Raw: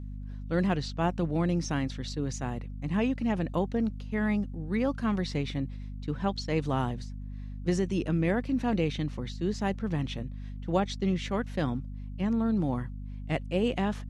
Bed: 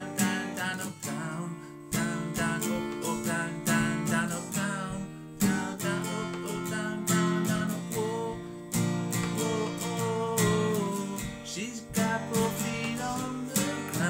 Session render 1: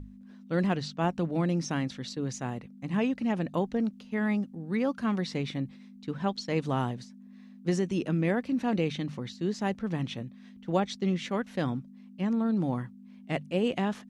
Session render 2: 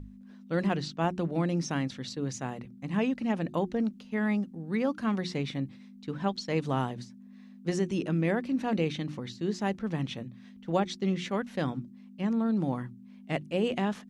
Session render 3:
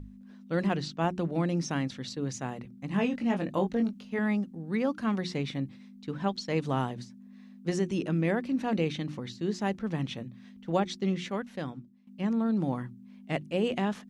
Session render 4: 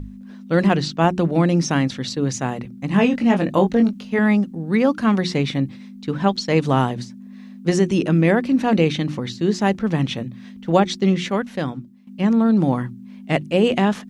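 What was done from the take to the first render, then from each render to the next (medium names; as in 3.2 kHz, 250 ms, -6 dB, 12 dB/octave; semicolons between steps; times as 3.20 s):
hum notches 50/100/150 Hz
hum notches 60/120/180/240/300/360 Hz
2.89–4.19 s: doubling 21 ms -5 dB; 11.06–12.07 s: fade out, to -15 dB
trim +11.5 dB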